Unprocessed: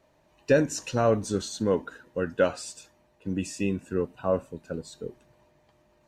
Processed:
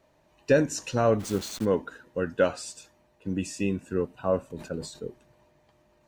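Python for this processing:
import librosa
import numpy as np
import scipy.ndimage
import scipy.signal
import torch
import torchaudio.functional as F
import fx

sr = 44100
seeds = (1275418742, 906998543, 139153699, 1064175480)

y = fx.delta_hold(x, sr, step_db=-36.0, at=(1.19, 1.64), fade=0.02)
y = fx.sustainer(y, sr, db_per_s=95.0, at=(4.5, 4.99), fade=0.02)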